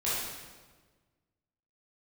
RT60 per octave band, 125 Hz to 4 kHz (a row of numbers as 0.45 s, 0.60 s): 1.9 s, 1.7 s, 1.5 s, 1.3 s, 1.2 s, 1.1 s